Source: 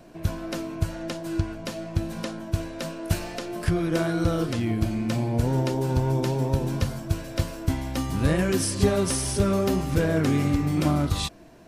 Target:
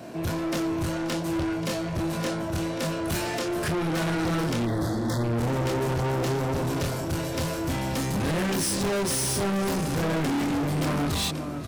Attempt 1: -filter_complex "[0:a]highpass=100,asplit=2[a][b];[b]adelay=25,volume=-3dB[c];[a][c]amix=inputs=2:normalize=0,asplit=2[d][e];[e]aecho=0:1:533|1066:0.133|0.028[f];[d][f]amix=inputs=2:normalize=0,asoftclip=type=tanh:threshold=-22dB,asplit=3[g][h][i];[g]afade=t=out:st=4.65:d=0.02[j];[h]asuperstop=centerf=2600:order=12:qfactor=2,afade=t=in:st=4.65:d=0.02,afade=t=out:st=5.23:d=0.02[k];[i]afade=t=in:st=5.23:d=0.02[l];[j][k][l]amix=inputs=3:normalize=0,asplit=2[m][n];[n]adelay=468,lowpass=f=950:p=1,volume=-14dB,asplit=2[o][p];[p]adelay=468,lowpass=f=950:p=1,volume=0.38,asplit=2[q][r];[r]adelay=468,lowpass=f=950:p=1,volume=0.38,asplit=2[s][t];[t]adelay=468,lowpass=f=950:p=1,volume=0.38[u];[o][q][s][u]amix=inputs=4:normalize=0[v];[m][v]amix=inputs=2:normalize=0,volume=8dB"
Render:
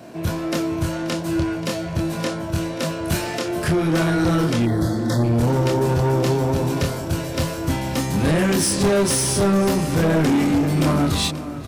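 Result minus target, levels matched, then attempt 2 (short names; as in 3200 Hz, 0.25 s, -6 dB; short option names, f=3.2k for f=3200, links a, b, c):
soft clip: distortion -6 dB
-filter_complex "[0:a]highpass=100,asplit=2[a][b];[b]adelay=25,volume=-3dB[c];[a][c]amix=inputs=2:normalize=0,asplit=2[d][e];[e]aecho=0:1:533|1066:0.133|0.028[f];[d][f]amix=inputs=2:normalize=0,asoftclip=type=tanh:threshold=-32.5dB,asplit=3[g][h][i];[g]afade=t=out:st=4.65:d=0.02[j];[h]asuperstop=centerf=2600:order=12:qfactor=2,afade=t=in:st=4.65:d=0.02,afade=t=out:st=5.23:d=0.02[k];[i]afade=t=in:st=5.23:d=0.02[l];[j][k][l]amix=inputs=3:normalize=0,asplit=2[m][n];[n]adelay=468,lowpass=f=950:p=1,volume=-14dB,asplit=2[o][p];[p]adelay=468,lowpass=f=950:p=1,volume=0.38,asplit=2[q][r];[r]adelay=468,lowpass=f=950:p=1,volume=0.38,asplit=2[s][t];[t]adelay=468,lowpass=f=950:p=1,volume=0.38[u];[o][q][s][u]amix=inputs=4:normalize=0[v];[m][v]amix=inputs=2:normalize=0,volume=8dB"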